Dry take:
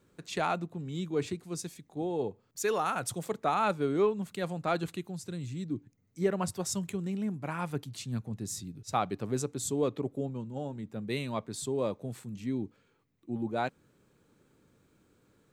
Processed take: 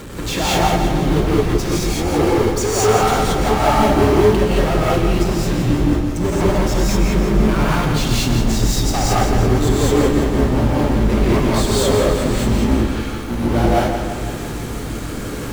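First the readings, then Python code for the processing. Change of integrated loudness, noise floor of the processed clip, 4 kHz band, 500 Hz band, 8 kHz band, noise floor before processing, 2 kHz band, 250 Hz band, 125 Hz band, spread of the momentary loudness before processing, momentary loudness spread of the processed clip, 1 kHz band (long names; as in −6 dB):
+16.5 dB, −26 dBFS, +20.0 dB, +16.0 dB, +15.0 dB, −70 dBFS, +16.5 dB, +17.5 dB, +20.0 dB, 10 LU, 8 LU, +15.0 dB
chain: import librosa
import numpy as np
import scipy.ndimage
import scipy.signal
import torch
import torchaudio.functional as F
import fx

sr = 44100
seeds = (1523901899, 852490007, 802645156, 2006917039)

y = fx.octave_divider(x, sr, octaves=2, level_db=0.0)
y = fx.env_lowpass_down(y, sr, base_hz=950.0, full_db=-26.0)
y = fx.power_curve(y, sr, exponent=0.35)
y = fx.echo_feedback(y, sr, ms=168, feedback_pct=56, wet_db=-7.5)
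y = fx.rev_gated(y, sr, seeds[0], gate_ms=250, shape='rising', drr_db=-6.0)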